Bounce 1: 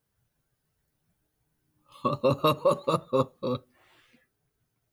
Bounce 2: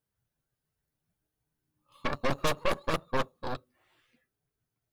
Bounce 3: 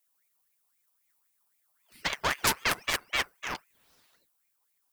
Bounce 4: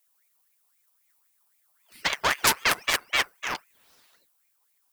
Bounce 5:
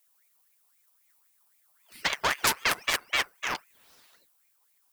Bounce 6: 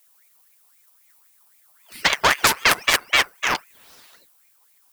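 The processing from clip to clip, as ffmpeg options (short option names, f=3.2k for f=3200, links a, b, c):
-af "aeval=exprs='0.266*(cos(1*acos(clip(val(0)/0.266,-1,1)))-cos(1*PI/2))+0.106*(cos(6*acos(clip(val(0)/0.266,-1,1)))-cos(6*PI/2))':c=same,volume=-8dB"
-af "crystalizer=i=4.5:c=0,aeval=exprs='val(0)*sin(2*PI*1600*n/s+1600*0.45/3.8*sin(2*PI*3.8*n/s))':c=same"
-af "lowshelf=f=270:g=-7,volume=5dB"
-af "acompressor=threshold=-30dB:ratio=1.5,volume=1.5dB"
-af "alimiter=level_in=10.5dB:limit=-1dB:release=50:level=0:latency=1,volume=-1dB"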